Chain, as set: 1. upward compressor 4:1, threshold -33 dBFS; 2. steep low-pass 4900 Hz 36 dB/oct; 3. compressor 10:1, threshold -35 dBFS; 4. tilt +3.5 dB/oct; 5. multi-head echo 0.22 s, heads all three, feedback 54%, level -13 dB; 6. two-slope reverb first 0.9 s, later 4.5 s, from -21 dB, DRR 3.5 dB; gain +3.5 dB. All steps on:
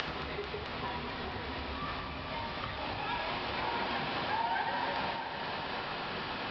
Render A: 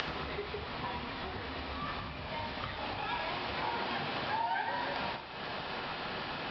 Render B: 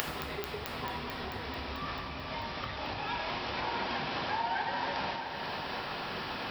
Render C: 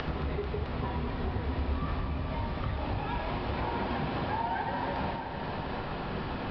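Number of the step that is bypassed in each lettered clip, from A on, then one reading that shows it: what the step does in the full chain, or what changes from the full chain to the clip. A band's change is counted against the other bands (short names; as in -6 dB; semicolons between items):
5, echo-to-direct -0.5 dB to -3.5 dB; 2, crest factor change +10.5 dB; 4, 125 Hz band +11.0 dB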